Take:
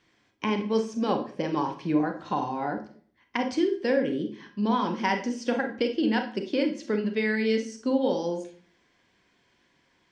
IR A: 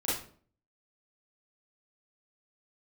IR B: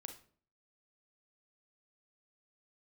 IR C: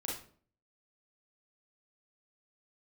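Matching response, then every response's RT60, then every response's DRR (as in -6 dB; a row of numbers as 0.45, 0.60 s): B; 0.50, 0.50, 0.50 s; -10.0, 5.0, -4.5 dB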